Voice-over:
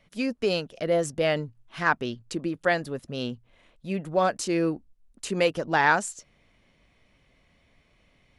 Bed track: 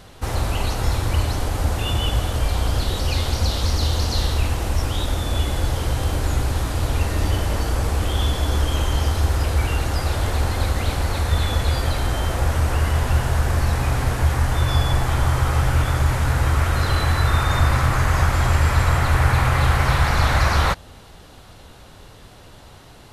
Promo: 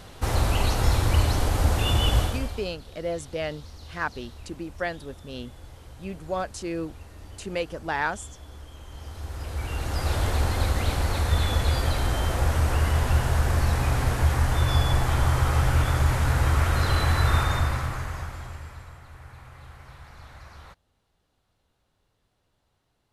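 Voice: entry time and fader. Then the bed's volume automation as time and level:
2.15 s, -6.0 dB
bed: 2.21 s -0.5 dB
2.77 s -23.5 dB
8.8 s -23.5 dB
10.12 s -3 dB
17.38 s -3 dB
19.01 s -28.5 dB

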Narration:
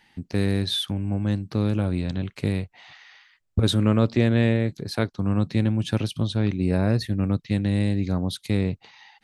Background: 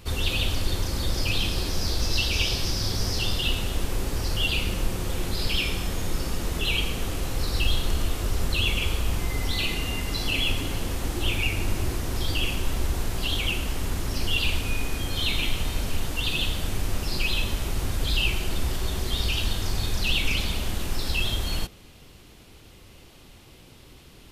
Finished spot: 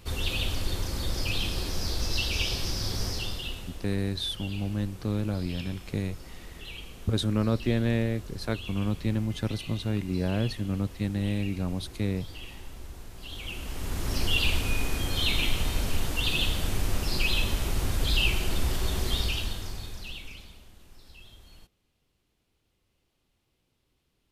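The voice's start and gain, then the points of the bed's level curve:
3.50 s, -6.0 dB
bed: 3.05 s -4 dB
3.9 s -16.5 dB
13.15 s -16.5 dB
14.13 s -0.5 dB
19.12 s -0.5 dB
20.71 s -25 dB

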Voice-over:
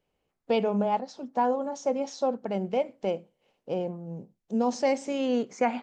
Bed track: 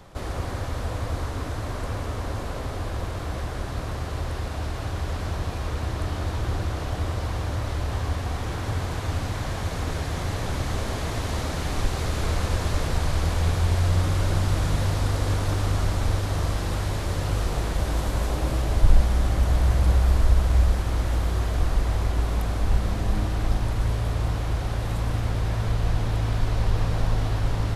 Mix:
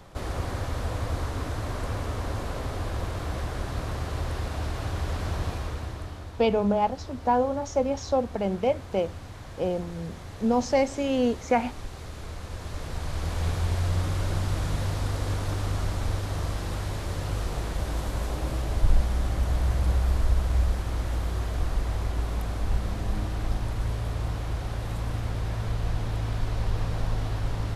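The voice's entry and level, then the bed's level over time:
5.90 s, +2.5 dB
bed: 5.49 s -1 dB
6.32 s -13 dB
12.43 s -13 dB
13.45 s -4.5 dB

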